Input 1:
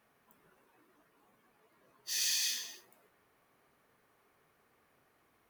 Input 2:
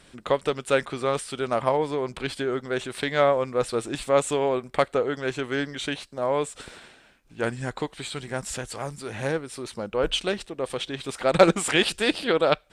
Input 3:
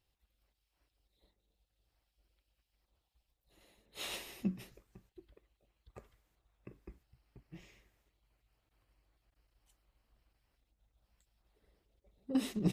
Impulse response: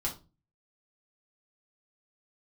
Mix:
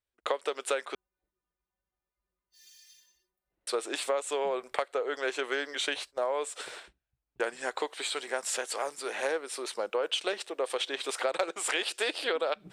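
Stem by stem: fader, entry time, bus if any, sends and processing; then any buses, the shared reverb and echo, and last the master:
-13.0 dB, 0.45 s, no send, metallic resonator 180 Hz, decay 0.24 s, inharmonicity 0.008
+2.0 dB, 0.00 s, muted 0.95–3.67, no send, HPF 400 Hz 24 dB/oct; gate -46 dBFS, range -41 dB
-15.0 dB, 0.00 s, no send, LPF 1700 Hz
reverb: off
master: compressor 16:1, threshold -26 dBFS, peak gain reduction 18.5 dB

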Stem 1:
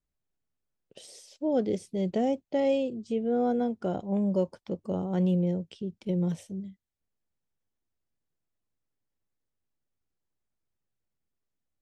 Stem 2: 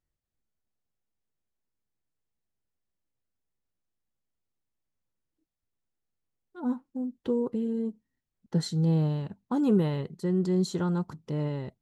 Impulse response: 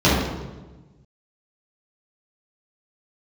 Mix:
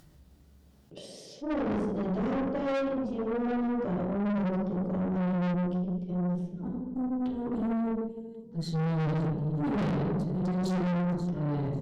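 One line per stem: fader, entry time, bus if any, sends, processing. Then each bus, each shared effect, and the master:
5.49 s -10.5 dB -> 5.92 s -18 dB, 0.00 s, send -13.5 dB, no echo send, dry
-1.5 dB, 0.00 s, send -20 dB, echo send -12.5 dB, auto swell 0.27 s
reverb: on, RT60 1.2 s, pre-delay 3 ms
echo: feedback echo 0.544 s, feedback 23%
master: upward compressor, threshold -35 dBFS; tube stage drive 27 dB, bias 0.5; attack slew limiter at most 460 dB/s

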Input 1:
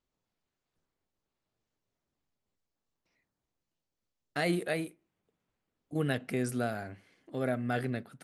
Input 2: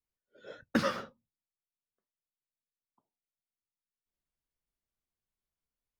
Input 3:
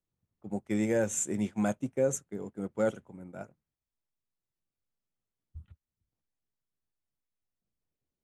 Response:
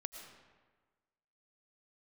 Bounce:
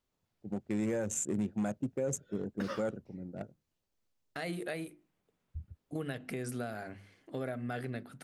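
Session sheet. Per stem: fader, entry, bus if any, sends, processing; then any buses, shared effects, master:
+2.0 dB, 0.00 s, no send, notches 50/100/150/200/250/300/350 Hz; compressor 4:1, threshold -37 dBFS, peak gain reduction 10 dB
-9.0 dB, 1.85 s, no send, dry
-6.5 dB, 0.00 s, no send, Wiener smoothing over 41 samples; AGC gain up to 10 dB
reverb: off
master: limiter -25 dBFS, peak gain reduction 11 dB

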